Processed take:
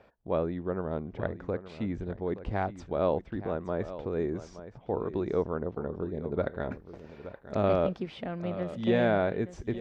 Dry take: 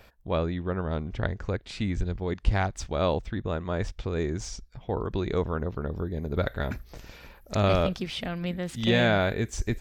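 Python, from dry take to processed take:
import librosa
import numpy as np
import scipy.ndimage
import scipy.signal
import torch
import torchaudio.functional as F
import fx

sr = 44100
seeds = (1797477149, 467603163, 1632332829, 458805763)

y = fx.bandpass_q(x, sr, hz=440.0, q=0.59)
y = y + 10.0 ** (-13.5 / 20.0) * np.pad(y, (int(872 * sr / 1000.0), 0))[:len(y)]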